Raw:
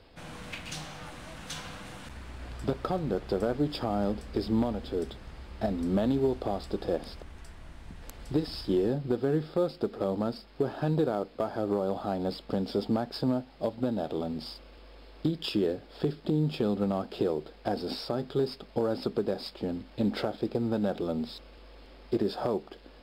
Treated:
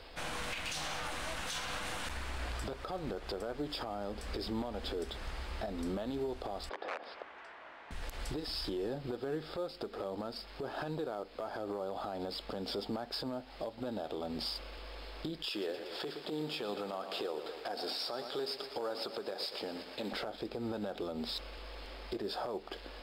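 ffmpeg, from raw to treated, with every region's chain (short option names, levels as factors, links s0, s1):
-filter_complex "[0:a]asettb=1/sr,asplit=3[s0][s1][s2];[s0]atrim=end=6.694[s3];[s1]atrim=start=6.69:end=7.91,asetpts=PTS-STARTPTS,afade=t=in:d=0.004:c=qsin,afade=t=out:st=1.216:d=0.004:c=qsin,aeval=exprs='(mod(14.1*val(0)+1,2)-1)/14.1':c=same,highpass=460,lowpass=2100[s4];[s2]atrim=start=7.906[s5];[s3][s4]acrossfade=d=0.004:c1=hsin:c2=qsin[s6];[s6][s5]acrossfade=d=0.004:c1=qsin:c2=hsin,asettb=1/sr,asplit=3[s7][s8][s9];[s7]atrim=end=15.504[s10];[s8]atrim=start=15.5:end=20.13,asetpts=PTS-STARTPTS,afade=t=in:d=0.004:c=qsin,afade=t=out:st=4.626:d=0.004:c=qsin,highpass=f=590:p=1,aecho=1:1:118|236|354|472|590|708:0.211|0.123|0.0711|0.0412|0.0239|0.0139,atrim=end_sample=204183[s11];[s9]atrim=start=20.126[s12];[s10][s11]acrossfade=d=0.004:c1=hsin:c2=qsin[s13];[s13][s12]acrossfade=d=0.004:c1=qsin:c2=hsin,equalizer=f=150:w=0.51:g=-12.5,acompressor=threshold=0.01:ratio=10,alimiter=level_in=4.22:limit=0.0631:level=0:latency=1:release=39,volume=0.237,volume=2.51"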